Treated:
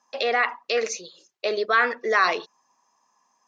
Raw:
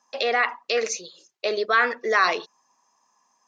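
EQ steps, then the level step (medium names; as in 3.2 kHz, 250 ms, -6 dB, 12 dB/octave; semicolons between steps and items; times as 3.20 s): treble shelf 6.8 kHz -5.5 dB; 0.0 dB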